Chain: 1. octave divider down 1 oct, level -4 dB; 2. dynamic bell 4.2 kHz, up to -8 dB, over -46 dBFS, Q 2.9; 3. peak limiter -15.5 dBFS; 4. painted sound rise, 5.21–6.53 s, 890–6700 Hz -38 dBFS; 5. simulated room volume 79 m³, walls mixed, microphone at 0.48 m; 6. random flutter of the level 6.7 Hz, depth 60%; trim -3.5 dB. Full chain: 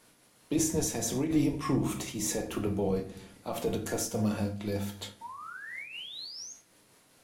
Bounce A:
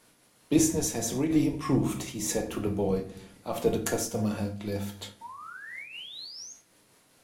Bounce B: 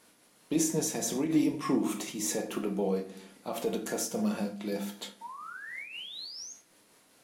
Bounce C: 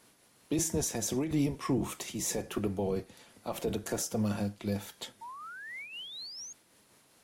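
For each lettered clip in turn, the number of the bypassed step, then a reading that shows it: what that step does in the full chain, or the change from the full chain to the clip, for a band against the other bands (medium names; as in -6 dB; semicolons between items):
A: 3, crest factor change +4.5 dB; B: 1, 125 Hz band -6.0 dB; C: 5, loudness change -2.0 LU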